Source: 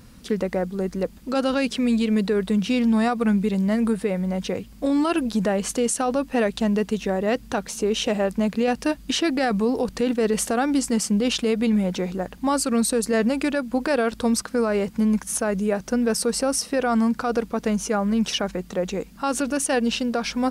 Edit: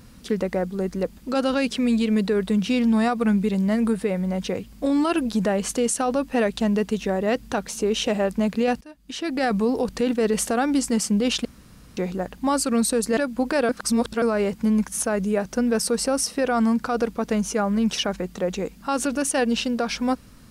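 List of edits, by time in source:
8.81–9.45 fade in quadratic, from -22.5 dB
11.45–11.97 room tone
13.17–13.52 cut
14.04–14.57 reverse

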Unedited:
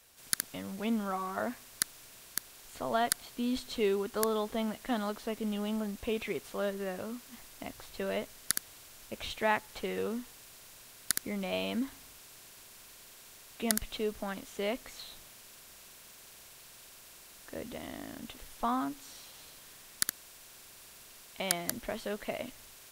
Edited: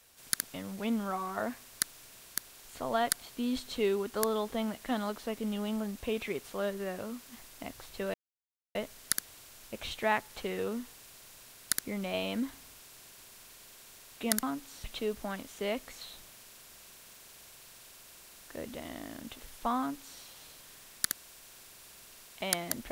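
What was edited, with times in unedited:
8.14 insert silence 0.61 s
18.77–19.18 copy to 13.82

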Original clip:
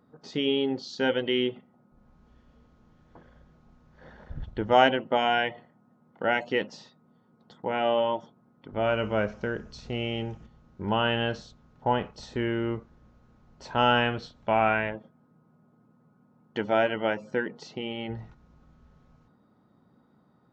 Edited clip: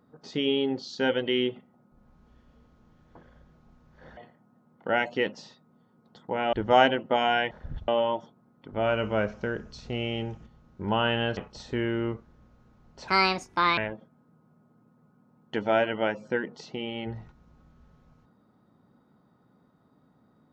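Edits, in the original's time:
4.17–4.54 swap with 5.52–7.88
11.37–12 cut
13.71–14.8 speed 157%

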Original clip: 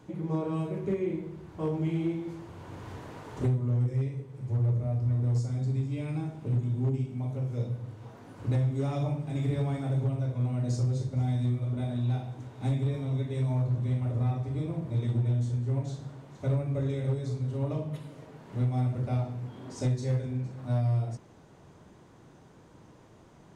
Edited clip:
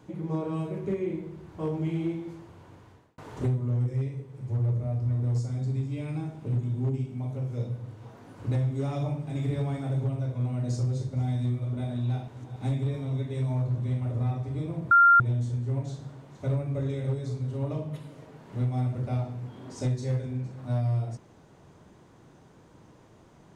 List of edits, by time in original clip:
2.1–3.18 fade out
12.28–12.56 reverse
14.91–15.2 bleep 1390 Hz -13.5 dBFS

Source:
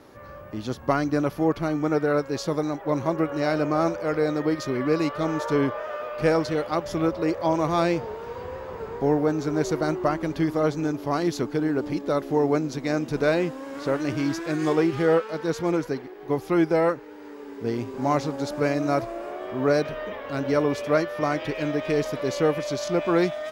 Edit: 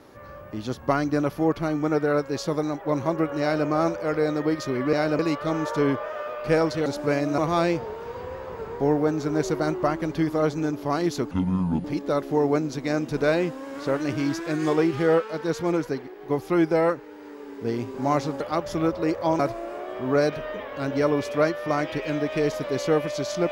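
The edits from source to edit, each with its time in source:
3.41–3.67 copy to 4.93
6.6–7.59 swap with 18.4–18.92
11.52–11.84 speed 60%

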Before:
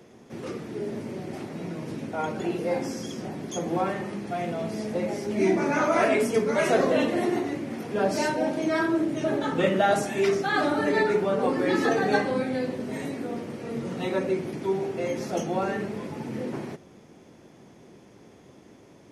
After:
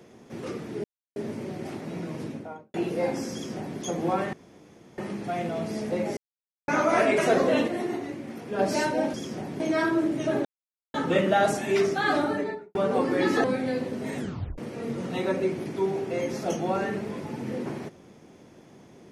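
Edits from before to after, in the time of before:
0.84 insert silence 0.32 s
1.86–2.42 studio fade out
3.01–3.47 copy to 8.57
4.01 insert room tone 0.65 s
5.2–5.71 mute
6.21–6.61 cut
7.11–8.02 gain -4.5 dB
9.42 insert silence 0.49 s
10.63–11.23 studio fade out
11.92–12.31 cut
13.03 tape stop 0.42 s

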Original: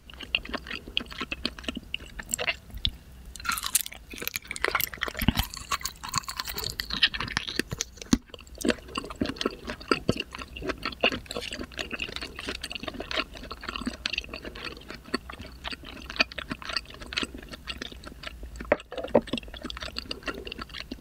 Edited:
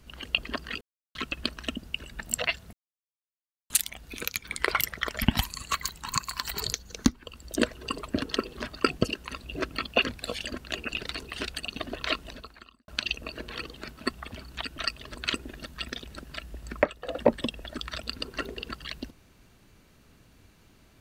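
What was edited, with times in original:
0.81–1.15 mute
2.73–3.7 mute
6.74–7.81 cut
13.34–13.95 fade out quadratic
15.86–16.68 cut

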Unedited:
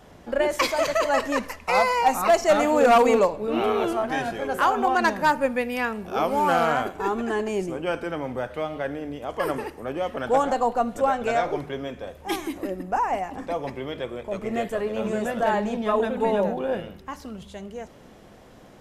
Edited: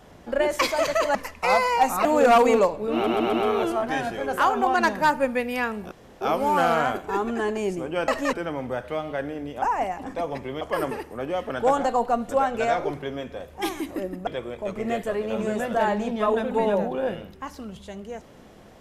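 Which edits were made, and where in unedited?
1.15–1.4 move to 7.99
2.3–2.65 cut
3.54 stutter 0.13 s, 4 plays
6.12 insert room tone 0.30 s
12.94–13.93 move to 9.28

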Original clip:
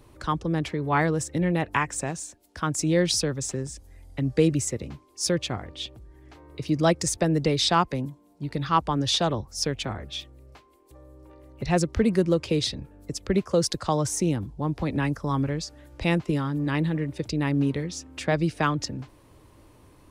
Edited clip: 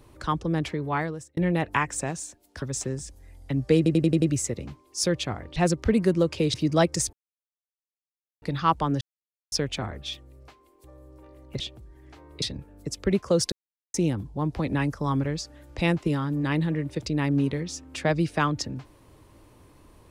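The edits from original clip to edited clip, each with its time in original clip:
0.7–1.37 fade out
2.62–3.3 cut
4.45 stutter 0.09 s, 6 plays
5.79–6.61 swap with 11.67–12.65
7.2–8.49 mute
9.08–9.59 mute
13.75–14.17 mute

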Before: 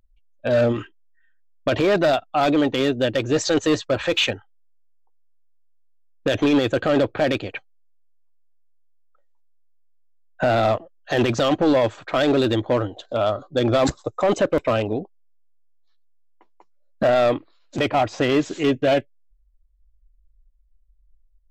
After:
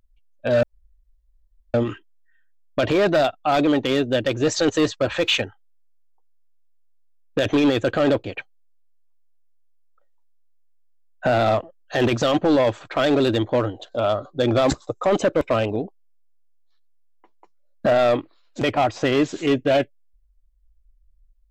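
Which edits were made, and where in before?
0.63 insert room tone 1.11 s
7.13–7.41 cut

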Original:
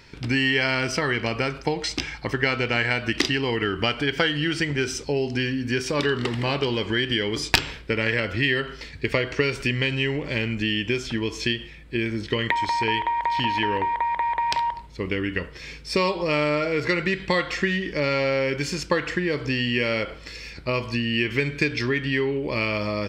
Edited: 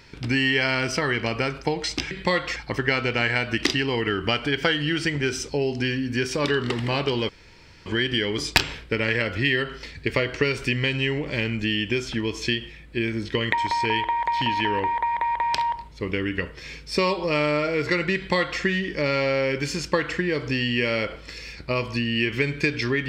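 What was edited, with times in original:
6.84 insert room tone 0.57 s
17.14–17.59 copy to 2.11

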